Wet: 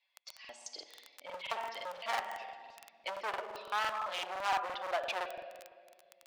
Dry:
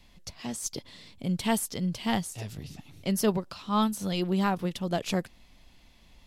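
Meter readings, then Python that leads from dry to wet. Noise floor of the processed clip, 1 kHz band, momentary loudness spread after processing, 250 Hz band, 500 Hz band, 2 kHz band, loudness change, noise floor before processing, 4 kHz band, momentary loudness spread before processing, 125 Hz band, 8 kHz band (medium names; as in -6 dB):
-67 dBFS, -2.0 dB, 17 LU, -32.5 dB, -8.5 dB, 0.0 dB, -8.0 dB, -57 dBFS, -5.0 dB, 15 LU, under -35 dB, -15.5 dB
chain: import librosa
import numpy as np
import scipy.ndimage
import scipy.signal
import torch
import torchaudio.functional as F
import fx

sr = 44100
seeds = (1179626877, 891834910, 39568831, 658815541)

p1 = fx.bin_expand(x, sr, power=1.5)
p2 = scipy.signal.sosfilt(scipy.signal.butter(2, 3000.0, 'lowpass', fs=sr, output='sos'), p1)
p3 = fx.rider(p2, sr, range_db=10, speed_s=0.5)
p4 = p2 + (p3 * librosa.db_to_amplitude(-1.0))
p5 = fx.env_lowpass_down(p4, sr, base_hz=2100.0, full_db=-22.5)
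p6 = fx.room_shoebox(p5, sr, seeds[0], volume_m3=2900.0, walls='mixed', distance_m=1.1)
p7 = fx.dmg_crackle(p6, sr, seeds[1], per_s=11.0, level_db=-31.0)
p8 = np.clip(10.0 ** (25.5 / 20.0) * p7, -1.0, 1.0) / 10.0 ** (25.5 / 20.0)
p9 = scipy.signal.sosfilt(scipy.signal.butter(4, 650.0, 'highpass', fs=sr, output='sos'), p8)
y = fx.buffer_crackle(p9, sr, first_s=0.4, period_s=0.17, block=2048, kind='repeat')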